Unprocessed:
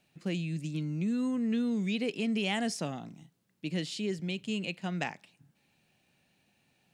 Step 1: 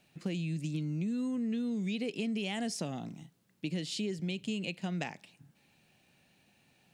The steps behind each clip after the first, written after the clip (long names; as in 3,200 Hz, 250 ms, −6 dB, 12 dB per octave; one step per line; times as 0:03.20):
dynamic equaliser 1,300 Hz, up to −5 dB, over −50 dBFS, Q 0.89
downward compressor, threshold −35 dBFS, peak gain reduction 7.5 dB
level +3.5 dB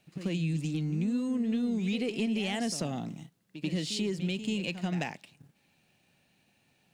leveller curve on the samples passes 1
on a send: backwards echo 88 ms −11 dB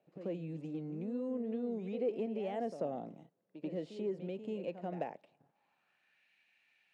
dynamic equaliser 4,400 Hz, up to −4 dB, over −47 dBFS, Q 0.8
band-pass filter sweep 540 Hz → 2,100 Hz, 0:05.22–0:06.24
level +3.5 dB